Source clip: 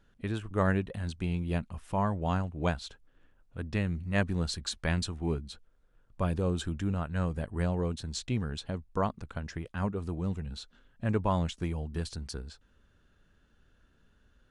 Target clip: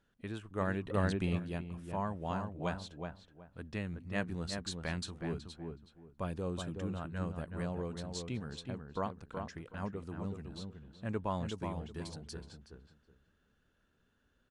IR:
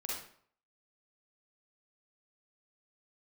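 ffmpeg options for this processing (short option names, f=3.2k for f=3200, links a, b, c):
-filter_complex "[0:a]lowshelf=f=71:g=-11.5,asplit=2[a][b];[b]adelay=372,lowpass=f=1.7k:p=1,volume=-5dB,asplit=2[c][d];[d]adelay=372,lowpass=f=1.7k:p=1,volume=0.23,asplit=2[e][f];[f]adelay=372,lowpass=f=1.7k:p=1,volume=0.23[g];[a][c][e][g]amix=inputs=4:normalize=0,asplit=3[h][i][j];[h]afade=t=out:st=0.84:d=0.02[k];[i]acontrast=77,afade=t=in:st=0.84:d=0.02,afade=t=out:st=1.38:d=0.02[l];[j]afade=t=in:st=1.38:d=0.02[m];[k][l][m]amix=inputs=3:normalize=0,volume=-6.5dB"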